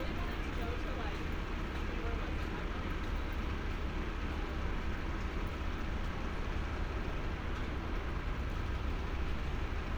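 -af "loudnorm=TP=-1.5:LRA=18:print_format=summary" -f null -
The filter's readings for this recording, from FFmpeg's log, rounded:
Input Integrated:    -39.5 LUFS
Input True Peak:     -24.4 dBTP
Input LRA:             0.3 LU
Input Threshold:     -49.5 LUFS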